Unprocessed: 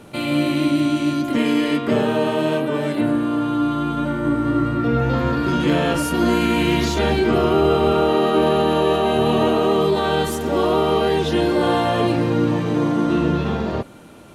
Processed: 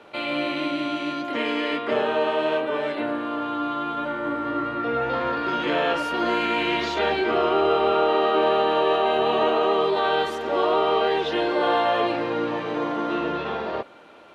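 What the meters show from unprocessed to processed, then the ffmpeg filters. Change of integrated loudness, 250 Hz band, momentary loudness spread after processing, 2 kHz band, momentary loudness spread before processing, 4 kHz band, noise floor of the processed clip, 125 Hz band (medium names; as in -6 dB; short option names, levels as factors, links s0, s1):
-4.5 dB, -10.0 dB, 7 LU, -0.5 dB, 4 LU, -2.0 dB, -31 dBFS, -18.5 dB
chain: -filter_complex "[0:a]acrossover=split=390 4400:gain=0.1 1 0.0794[s0][s1][s2];[s0][s1][s2]amix=inputs=3:normalize=0"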